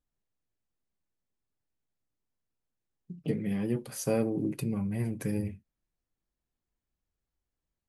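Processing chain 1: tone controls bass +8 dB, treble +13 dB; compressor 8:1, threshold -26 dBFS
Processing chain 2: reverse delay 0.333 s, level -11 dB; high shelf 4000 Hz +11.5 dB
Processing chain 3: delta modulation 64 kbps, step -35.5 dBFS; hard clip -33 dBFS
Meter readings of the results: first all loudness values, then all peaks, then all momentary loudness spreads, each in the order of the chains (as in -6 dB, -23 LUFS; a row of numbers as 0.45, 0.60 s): -31.5, -31.0, -39.0 LUFS; -17.0, -14.5, -33.0 dBFS; 7, 19, 18 LU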